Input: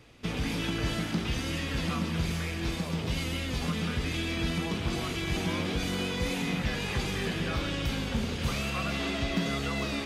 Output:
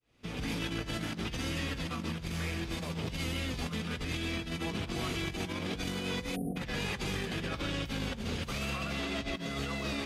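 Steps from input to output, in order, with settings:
fade in at the beginning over 0.54 s
time-frequency box erased 0:06.36–0:06.56, 790–8,800 Hz
compressor whose output falls as the input rises −32 dBFS, ratio −0.5
level −3 dB

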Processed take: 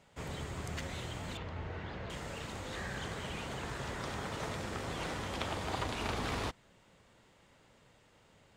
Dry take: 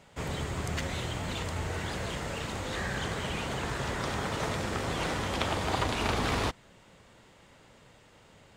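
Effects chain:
0:01.37–0:02.10: high-frequency loss of the air 240 metres
level −7 dB

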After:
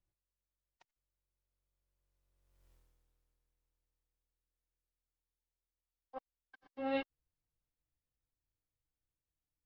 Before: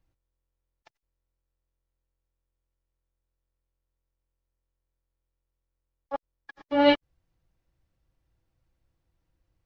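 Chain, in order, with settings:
source passing by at 0:02.71, 22 m/s, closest 2.5 metres
level +14.5 dB

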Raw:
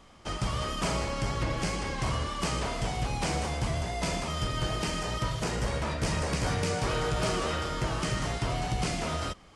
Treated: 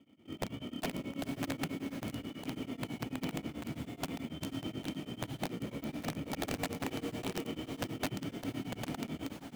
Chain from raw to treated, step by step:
formant resonators in series i
low-shelf EQ 170 Hz −8.5 dB
in parallel at −4.5 dB: sample-rate reduction 1,600 Hz, jitter 0%
on the sum: high-pass filter 87 Hz 24 dB per octave
wrap-around overflow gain 32.5 dB
parametric band 600 Hz +4.5 dB 1.3 octaves
feedback delay with all-pass diffusion 490 ms, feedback 44%, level −9 dB
tremolo along a rectified sine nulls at 9.2 Hz
level +4.5 dB

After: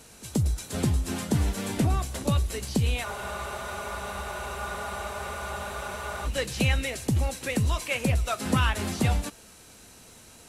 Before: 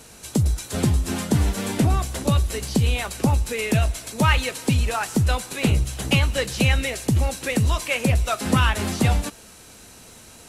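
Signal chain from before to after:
echo ahead of the sound 134 ms −23 dB
frozen spectrum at 0:03.07, 3.19 s
level −5 dB

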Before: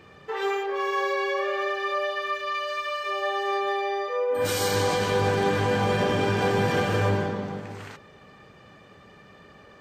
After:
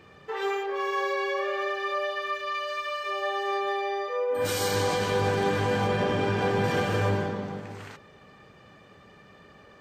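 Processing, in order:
0:05.87–0:06.64: high-shelf EQ 5,800 Hz −8 dB
level −2 dB

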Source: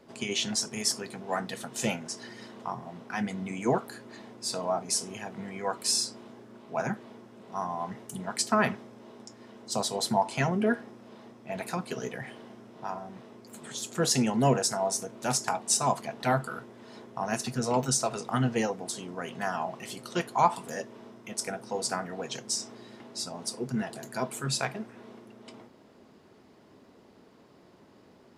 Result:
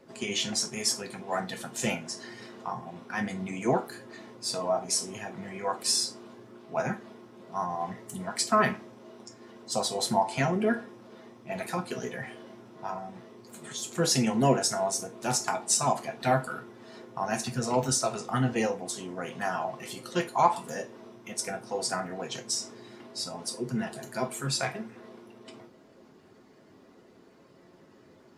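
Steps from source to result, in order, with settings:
spectral magnitudes quantised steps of 15 dB
on a send: low-shelf EQ 330 Hz −8.5 dB + convolution reverb RT60 0.30 s, pre-delay 3 ms, DRR 4.5 dB

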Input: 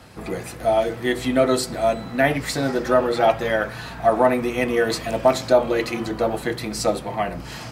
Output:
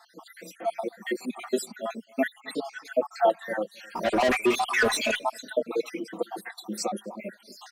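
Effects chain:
time-frequency cells dropped at random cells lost 66%
elliptic high-pass filter 190 Hz
reverb reduction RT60 0.72 s
dynamic equaliser 2,100 Hz, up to −4 dB, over −36 dBFS, Q 0.78
0:02.40–0:02.85: low-pass that shuts in the quiet parts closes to 1,700 Hz, open at −30 dBFS
0:03.95–0:05.19: mid-hump overdrive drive 26 dB, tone 5,300 Hz, clips at −11 dBFS
slap from a distant wall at 45 metres, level −26 dB
barber-pole flanger 4.1 ms +0.35 Hz

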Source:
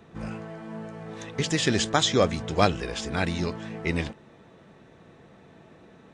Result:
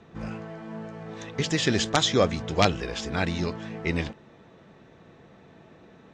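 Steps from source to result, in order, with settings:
wrap-around overflow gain 7.5 dB
low-pass filter 7,200 Hz 24 dB per octave

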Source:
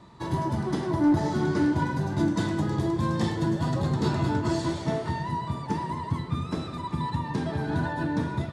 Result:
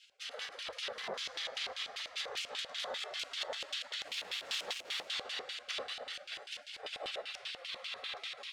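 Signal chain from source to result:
stylus tracing distortion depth 0.044 ms
high-pass filter 41 Hz 12 dB per octave
low-shelf EQ 230 Hz −10 dB
mains-hum notches 60/120/180/240/300 Hz
feedback delay with all-pass diffusion 510 ms, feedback 43%, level −9 dB
brickwall limiter −23.5 dBFS, peak gain reduction 7 dB
log-companded quantiser 8 bits
gate on every frequency bin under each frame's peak −25 dB weak
0:04.07–0:05.08: bit-depth reduction 8 bits, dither none
auto-filter band-pass square 5.1 Hz 560–3,100 Hz
level +16 dB

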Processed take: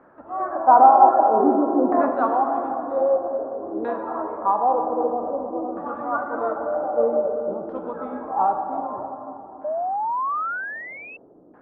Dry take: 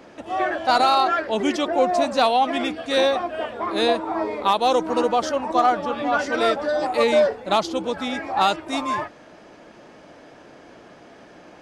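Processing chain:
auto-filter low-pass saw down 0.52 Hz 320–1,700 Hz
0:00.55–0:02.09: octave-band graphic EQ 125/250/500/1,000/2,000/4,000 Hz −7/+9/+4/+6/+9/−8 dB
dense smooth reverb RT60 3.3 s, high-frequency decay 0.4×, DRR 3.5 dB
0:09.64–0:11.17: sound drawn into the spectrogram rise 590–2,700 Hz −17 dBFS
high shelf with overshoot 1,700 Hz −10.5 dB, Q 1.5
level −9.5 dB

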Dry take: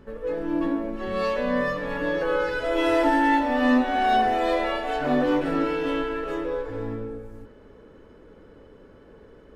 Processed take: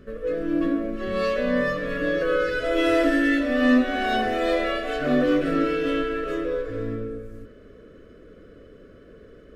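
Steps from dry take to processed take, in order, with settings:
Butterworth band-reject 880 Hz, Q 2
level +2 dB

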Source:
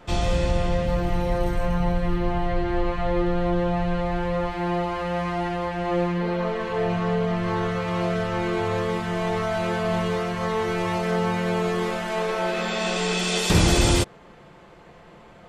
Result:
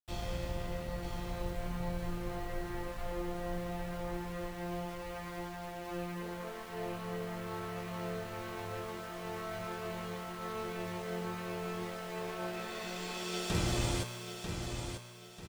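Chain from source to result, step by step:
dead-zone distortion −34 dBFS
tuned comb filter 120 Hz, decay 1.6 s, mix 80%
bit reduction 9 bits
repeating echo 942 ms, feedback 36%, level −7 dB
level −1 dB

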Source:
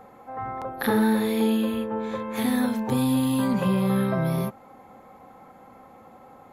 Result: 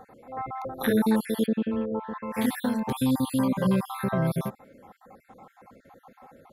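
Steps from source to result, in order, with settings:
time-frequency cells dropped at random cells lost 41%
0:01.46–0:02.23: low-pass filter 1,700 Hz 12 dB per octave

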